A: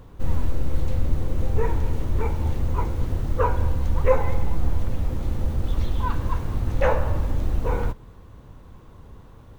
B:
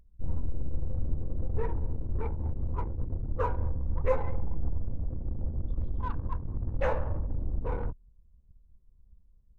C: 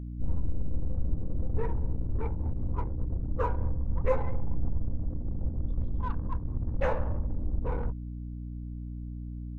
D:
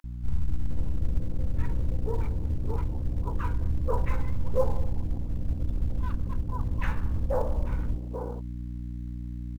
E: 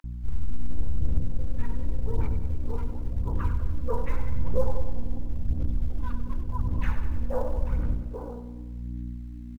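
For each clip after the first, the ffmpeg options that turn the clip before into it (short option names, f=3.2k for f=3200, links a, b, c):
-af "anlmdn=63.1,volume=-8dB"
-af "aeval=exprs='val(0)+0.0158*(sin(2*PI*60*n/s)+sin(2*PI*2*60*n/s)/2+sin(2*PI*3*60*n/s)/3+sin(2*PI*4*60*n/s)/4+sin(2*PI*5*60*n/s)/5)':c=same"
-filter_complex "[0:a]acrossover=split=250|1100[a][b][c];[a]adelay=40[d];[b]adelay=490[e];[d][e][c]amix=inputs=3:normalize=0,asplit=2[f][g];[g]acrusher=bits=5:mode=log:mix=0:aa=0.000001,volume=-10dB[h];[f][h]amix=inputs=2:normalize=0"
-af "aphaser=in_gain=1:out_gain=1:delay=4.3:decay=0.44:speed=0.89:type=sinusoidal,aecho=1:1:96|192|288|384|480|576|672:0.282|0.169|0.101|0.0609|0.0365|0.0219|0.0131,volume=-3dB"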